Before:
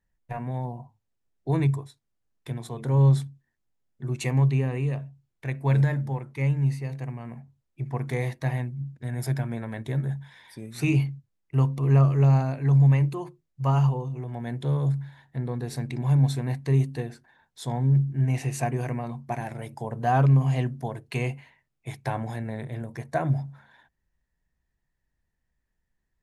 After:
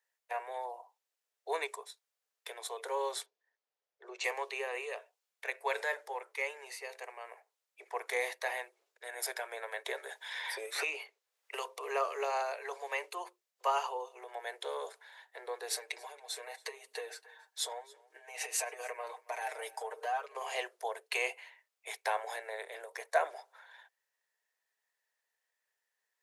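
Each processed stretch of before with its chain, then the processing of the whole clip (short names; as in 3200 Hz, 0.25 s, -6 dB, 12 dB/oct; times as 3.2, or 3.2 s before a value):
3.26–4.24 LPF 6100 Hz 24 dB/oct + tilt shelf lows +6 dB, about 820 Hz
9.85–11.65 high shelf 5000 Hz -5 dB + three-band squash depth 100%
15.7–20.35 compressor 8:1, threshold -31 dBFS + comb 6.5 ms, depth 87% + echo 0.277 s -23 dB
whole clip: steep high-pass 420 Hz 72 dB/oct; tilt shelf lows -4 dB, about 1100 Hz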